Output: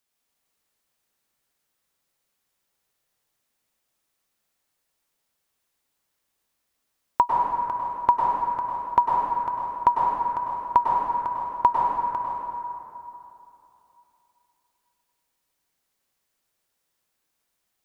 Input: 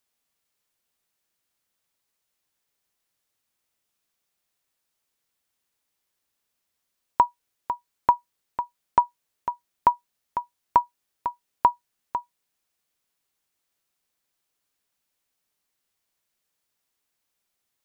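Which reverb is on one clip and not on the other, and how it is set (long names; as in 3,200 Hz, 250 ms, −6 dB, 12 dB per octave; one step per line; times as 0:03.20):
dense smooth reverb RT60 3 s, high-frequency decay 0.5×, pre-delay 90 ms, DRR −2.5 dB
level −1 dB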